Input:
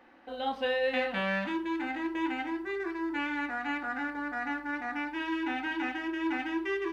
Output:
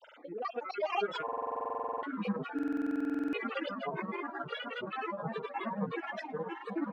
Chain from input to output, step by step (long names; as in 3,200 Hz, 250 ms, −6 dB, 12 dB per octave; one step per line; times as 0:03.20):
time-frequency cells dropped at random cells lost 50%
three-way crossover with the lows and the highs turned down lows −24 dB, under 200 Hz, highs −16 dB, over 2,000 Hz
comb filter 2.4 ms, depth 76%
on a send: echo with a time of its own for lows and highs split 790 Hz, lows 531 ms, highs 386 ms, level −5 dB
on the sum: upward compression, threshold −48 dBFS
granular cloud 87 ms, grains 19 per second, spray 53 ms, pitch spread up and down by 12 semitones
buffer that repeats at 0:01.24/0:02.54, samples 2,048, times 16